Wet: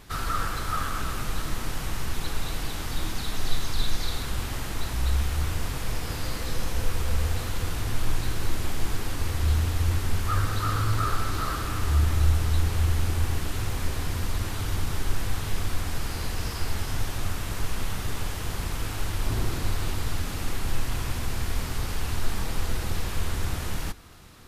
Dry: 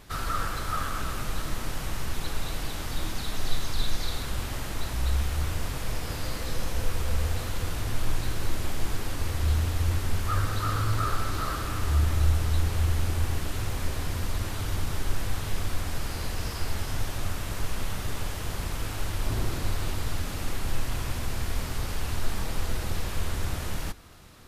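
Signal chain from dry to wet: peaking EQ 590 Hz -3.5 dB 0.33 oct; trim +1.5 dB

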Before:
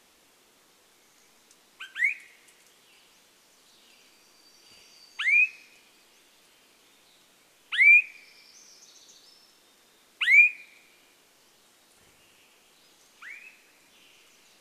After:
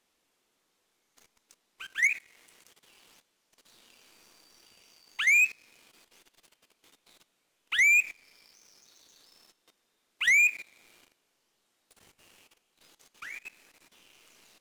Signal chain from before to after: level held to a coarse grid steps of 12 dB; waveshaping leveller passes 2

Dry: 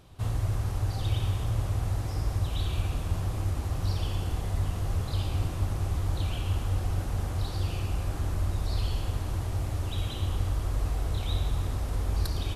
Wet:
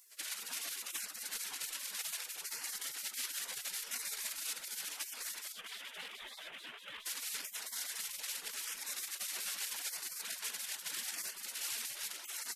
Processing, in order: 5.52–7.06 s: CVSD coder 16 kbps; reverb removal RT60 0.69 s; in parallel at -1.5 dB: peak limiter -25 dBFS, peak gain reduction 8.5 dB; on the sum: thinning echo 304 ms, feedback 77%, high-pass 710 Hz, level -19 dB; compressor with a negative ratio -27 dBFS, ratio -0.5; bass shelf 170 Hz -9.5 dB; spectral gate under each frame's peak -30 dB weak; trim +9.5 dB

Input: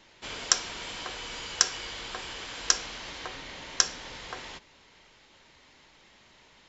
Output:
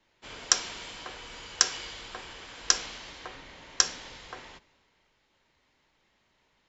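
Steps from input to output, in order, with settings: three bands expanded up and down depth 40%; trim -3 dB

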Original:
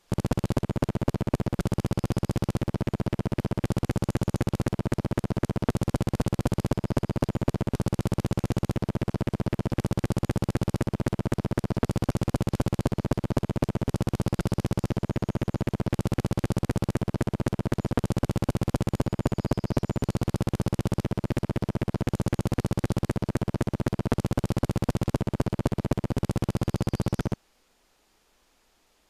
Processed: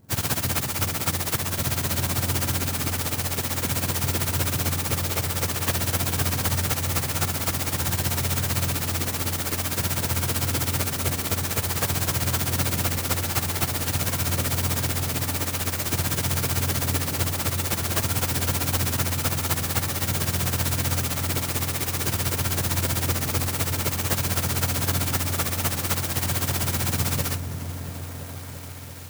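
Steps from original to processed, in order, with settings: spectrum inverted on a logarithmic axis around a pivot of 880 Hz; delay with an opening low-pass 340 ms, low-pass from 200 Hz, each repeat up 1 oct, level -3 dB; sampling jitter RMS 0.1 ms; trim +7.5 dB

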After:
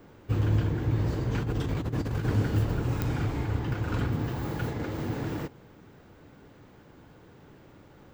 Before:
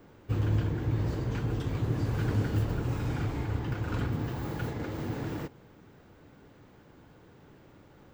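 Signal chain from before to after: 1.33–2.25 s: compressor with a negative ratio -31 dBFS, ratio -0.5; clicks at 3.02 s, -17 dBFS; trim +2.5 dB

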